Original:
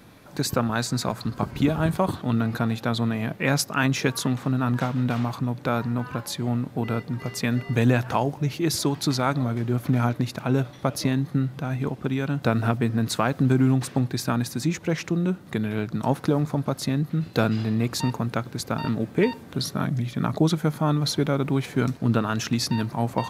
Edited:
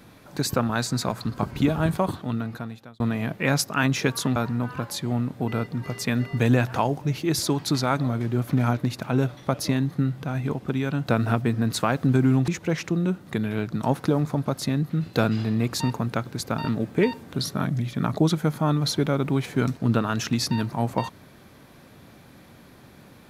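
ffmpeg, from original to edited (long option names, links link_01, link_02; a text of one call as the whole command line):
ffmpeg -i in.wav -filter_complex "[0:a]asplit=4[link_01][link_02][link_03][link_04];[link_01]atrim=end=3,asetpts=PTS-STARTPTS,afade=type=out:start_time=1.91:duration=1.09[link_05];[link_02]atrim=start=3:end=4.362,asetpts=PTS-STARTPTS,afade=type=in:duration=0.004:curve=hsin[link_06];[link_03]atrim=start=5.718:end=13.842[link_07];[link_04]atrim=start=14.678[link_08];[link_05][link_06]concat=n=2:v=0:a=1[link_09];[link_09][link_07]acrossfade=duration=0.004:curve1=hsin:curve2=hsin[link_10];[link_10][link_08]acrossfade=duration=0.004:curve1=hsin:curve2=hsin" out.wav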